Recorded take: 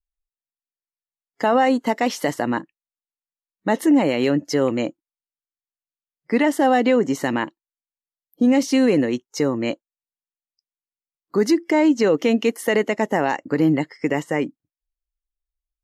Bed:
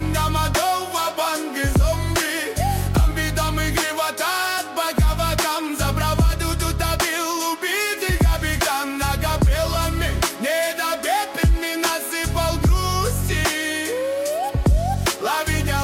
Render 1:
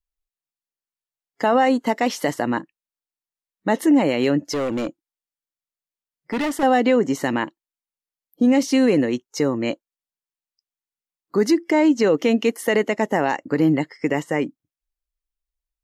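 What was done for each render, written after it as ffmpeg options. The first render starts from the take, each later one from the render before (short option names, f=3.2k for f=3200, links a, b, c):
-filter_complex "[0:a]asettb=1/sr,asplit=3[a][b][c];[a]atrim=end=4.514[d];[b]atrim=start=4.51:end=6.63,asetpts=PTS-STARTPTS,afade=t=in:d=0.004:c=qsin,afade=t=out:st=2.116:d=0.004:c=qsin,asoftclip=type=hard:threshold=-20dB[e];[c]atrim=start=6.626[f];[d][e]acrossfade=d=0.004:c1=hsin:c2=qsin[g];[g][f]acrossfade=d=0.004:c1=qsin:c2=hsin"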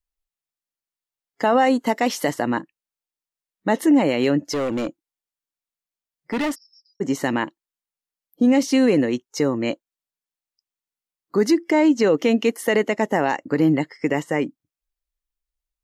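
-filter_complex "[0:a]asettb=1/sr,asplit=3[a][b][c];[a]atrim=end=1.584[d];[b]atrim=start=1.58:end=2.29,asetpts=PTS-STARTPTS,afade=t=in:d=0.004:c=qsin,afade=t=out:st=0.706:d=0.004:c=qsin,highshelf=f=8.9k:g=6[e];[c]atrim=start=2.286[f];[d][e]acrossfade=d=0.004:c1=hsin:c2=qsin[g];[g][f]acrossfade=d=0.004:c1=qsin:c2=hsin,asplit=3[h][i][j];[h]afade=t=out:st=6.54:d=0.02[k];[i]asuperpass=centerf=5200:order=8:qfactor=7,afade=t=in:st=6.54:d=0.02,afade=t=out:st=7:d=0.02[l];[j]afade=t=in:st=7:d=0.02[m];[k][l][m]amix=inputs=3:normalize=0"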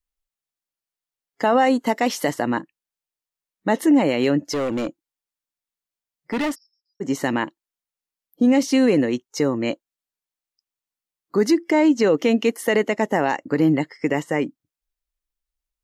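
-filter_complex "[0:a]asplit=3[a][b][c];[a]atrim=end=6.77,asetpts=PTS-STARTPTS,afade=t=out:st=6.49:d=0.28:silence=0.0707946[d];[b]atrim=start=6.77:end=6.85,asetpts=PTS-STARTPTS,volume=-23dB[e];[c]atrim=start=6.85,asetpts=PTS-STARTPTS,afade=t=in:d=0.28:silence=0.0707946[f];[d][e][f]concat=n=3:v=0:a=1"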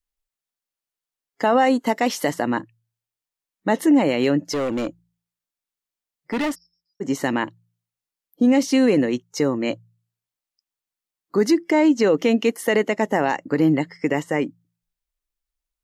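-af "bandreject=f=57.21:t=h:w=4,bandreject=f=114.42:t=h:w=4,bandreject=f=171.63:t=h:w=4"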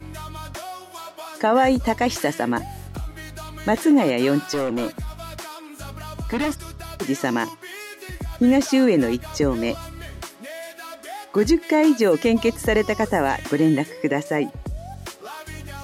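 -filter_complex "[1:a]volume=-14.5dB[a];[0:a][a]amix=inputs=2:normalize=0"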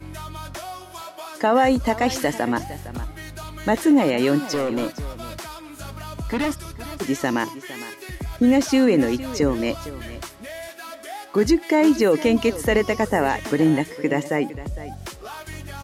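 -af "aecho=1:1:459:0.168"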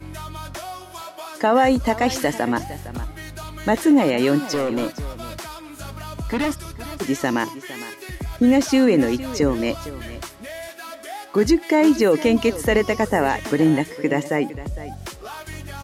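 -af "volume=1dB"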